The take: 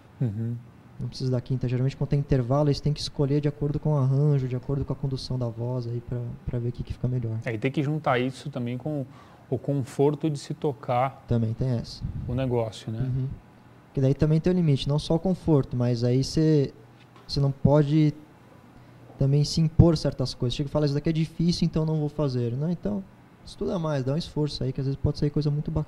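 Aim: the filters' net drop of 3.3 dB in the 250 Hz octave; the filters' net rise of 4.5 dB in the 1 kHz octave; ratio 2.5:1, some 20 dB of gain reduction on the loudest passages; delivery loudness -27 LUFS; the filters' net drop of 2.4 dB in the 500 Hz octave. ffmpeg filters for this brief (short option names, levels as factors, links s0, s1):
-af "equalizer=f=250:t=o:g=-5,equalizer=f=500:t=o:g=-3.5,equalizer=f=1000:t=o:g=8,acompressor=threshold=0.00631:ratio=2.5,volume=5.62"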